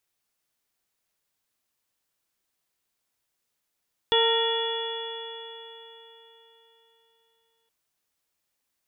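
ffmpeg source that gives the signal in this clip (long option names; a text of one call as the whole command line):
ffmpeg -f lavfi -i "aevalsrc='0.0841*pow(10,-3*t/3.83)*sin(2*PI*454.68*t)+0.0562*pow(10,-3*t/3.83)*sin(2*PI*913.43*t)+0.0211*pow(10,-3*t/3.83)*sin(2*PI*1380.26*t)+0.0299*pow(10,-3*t/3.83)*sin(2*PI*1859.07*t)+0.00891*pow(10,-3*t/3.83)*sin(2*PI*2353.59*t)+0.0335*pow(10,-3*t/3.83)*sin(2*PI*2867.33*t)+0.0891*pow(10,-3*t/3.83)*sin(2*PI*3403.58*t)':duration=3.57:sample_rate=44100" out.wav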